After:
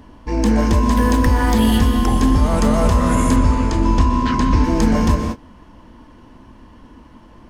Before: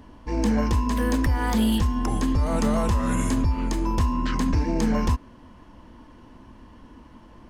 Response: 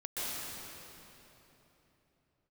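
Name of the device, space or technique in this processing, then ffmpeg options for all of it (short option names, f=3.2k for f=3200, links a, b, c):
keyed gated reverb: -filter_complex "[0:a]asplit=3[a][b][c];[1:a]atrim=start_sample=2205[d];[b][d]afir=irnorm=-1:irlink=0[e];[c]apad=whole_len=330407[f];[e][f]sidechaingate=range=-33dB:threshold=-41dB:ratio=16:detection=peak,volume=-6.5dB[g];[a][g]amix=inputs=2:normalize=0,asettb=1/sr,asplit=3[h][i][j];[h]atrim=end=3.364[k];[i]atrim=start=3.36:end=4.64,asetpts=PTS-STARTPTS,afade=t=in:d=0.004:c=qsin,afade=t=out:st=1.276:d=0.004:c=qsin,lowpass=6.5k[l];[j]atrim=start=4.636[m];[k][l]acrossfade=d=0.004:c1=hsin:c2=qsin[n];[n][m]acrossfade=d=0.004:c1=qsin:c2=hsin,volume=4dB"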